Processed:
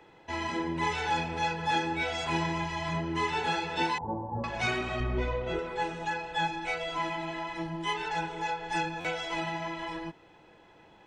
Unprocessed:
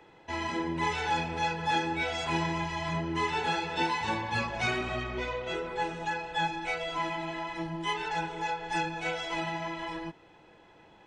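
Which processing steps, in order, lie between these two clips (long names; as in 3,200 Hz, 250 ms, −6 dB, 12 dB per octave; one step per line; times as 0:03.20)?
0:03.98–0:04.44: Butterworth low-pass 880 Hz 36 dB per octave
0:05.00–0:05.59: spectral tilt −2.5 dB per octave
buffer that repeats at 0:09.00, samples 512, times 3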